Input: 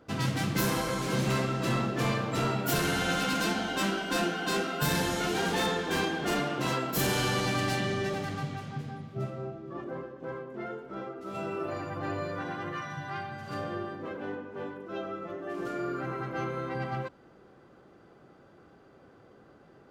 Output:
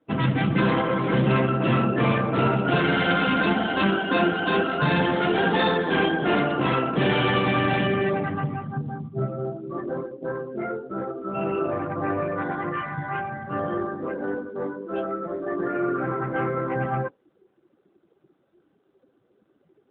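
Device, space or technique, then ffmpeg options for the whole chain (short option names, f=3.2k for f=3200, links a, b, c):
mobile call with aggressive noise cancelling: -filter_complex "[0:a]asplit=3[a][b][c];[a]afade=t=out:st=8.66:d=0.02[d];[b]lowpass=5.3k,afade=t=in:st=8.66:d=0.02,afade=t=out:st=9.68:d=0.02[e];[c]afade=t=in:st=9.68:d=0.02[f];[d][e][f]amix=inputs=3:normalize=0,asplit=3[g][h][i];[g]afade=t=out:st=10.33:d=0.02[j];[h]equalizer=f=82:t=o:w=2.3:g=2.5,afade=t=in:st=10.33:d=0.02,afade=t=out:st=11.85:d=0.02[k];[i]afade=t=in:st=11.85:d=0.02[l];[j][k][l]amix=inputs=3:normalize=0,highpass=110,afftdn=nr=21:nf=-41,volume=9dB" -ar 8000 -c:a libopencore_amrnb -b:a 12200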